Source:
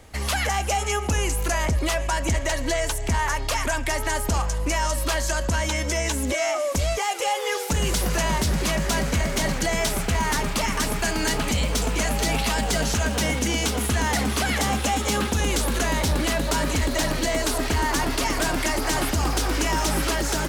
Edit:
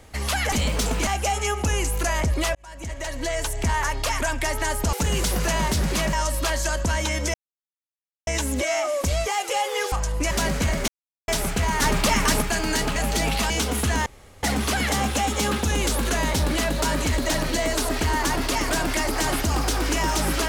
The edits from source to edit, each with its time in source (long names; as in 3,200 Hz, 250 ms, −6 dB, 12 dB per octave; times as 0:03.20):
0:02.00–0:03.01: fade in
0:04.38–0:04.77: swap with 0:07.63–0:08.83
0:05.98: splice in silence 0.93 s
0:09.40–0:09.80: silence
0:10.34–0:10.94: clip gain +4 dB
0:11.48–0:12.03: move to 0:00.52
0:12.57–0:13.56: remove
0:14.12: splice in room tone 0.37 s